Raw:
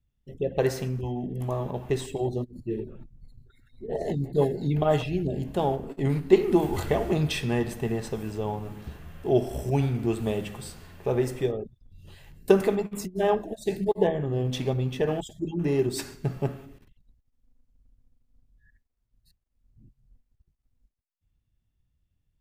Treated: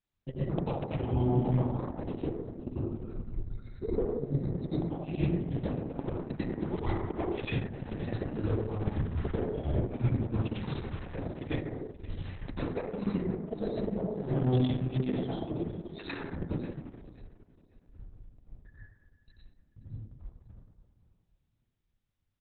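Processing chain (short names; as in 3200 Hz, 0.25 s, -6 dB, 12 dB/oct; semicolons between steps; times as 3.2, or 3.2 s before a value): de-hum 169.1 Hz, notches 19; gate with hold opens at -52 dBFS; transient shaper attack +11 dB, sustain -6 dB; compressor 3:1, threshold -24 dBFS, peak gain reduction 17.5 dB; flipped gate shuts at -18 dBFS, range -40 dB; 15.76–16.31 doubler 12 ms -6 dB; feedback echo 0.532 s, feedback 26%, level -16.5 dB; reverb RT60 1.2 s, pre-delay 82 ms, DRR -9.5 dB; gain -4 dB; Opus 6 kbps 48000 Hz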